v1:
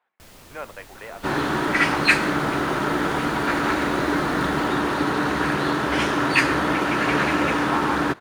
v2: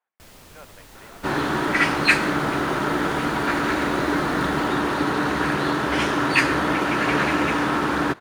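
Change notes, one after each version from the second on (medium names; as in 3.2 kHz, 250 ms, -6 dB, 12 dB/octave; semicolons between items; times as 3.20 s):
speech -11.0 dB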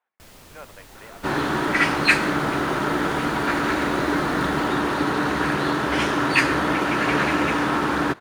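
speech +4.0 dB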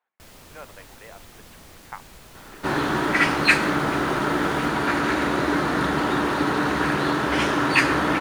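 second sound: entry +1.40 s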